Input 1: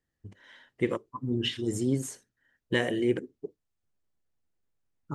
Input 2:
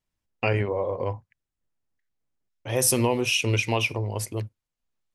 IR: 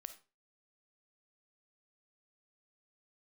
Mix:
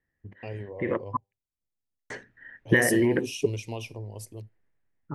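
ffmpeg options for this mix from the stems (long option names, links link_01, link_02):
-filter_complex "[0:a]alimiter=limit=-22.5dB:level=0:latency=1:release=50,dynaudnorm=framelen=220:gausssize=9:maxgain=12dB,lowpass=frequency=1800:width_type=q:width=3.8,volume=1dB,asplit=3[link_01][link_02][link_03];[link_01]atrim=end=1.17,asetpts=PTS-STARTPTS,afade=type=out:start_time=1.166:duration=0.004:curve=hsin[link_04];[link_02]atrim=start=1.17:end=2.1,asetpts=PTS-STARTPTS,volume=0[link_05];[link_03]atrim=start=2.1,asetpts=PTS-STARTPTS,afade=type=in:duration=0.004:curve=hsin[link_06];[link_04][link_05][link_06]concat=n=3:v=0:a=1[link_07];[1:a]equalizer=frequency=1800:width=1.2:gain=-11.5,volume=-13.5dB,asplit=3[link_08][link_09][link_10];[link_09]volume=-12dB[link_11];[link_10]apad=whole_len=227059[link_12];[link_07][link_12]sidechaincompress=threshold=-43dB:ratio=8:attack=37:release=220[link_13];[2:a]atrim=start_sample=2205[link_14];[link_11][link_14]afir=irnorm=-1:irlink=0[link_15];[link_13][link_08][link_15]amix=inputs=3:normalize=0,equalizer=frequency=1400:width=1.6:gain=-7.5,dynaudnorm=framelen=200:gausssize=11:maxgain=4dB"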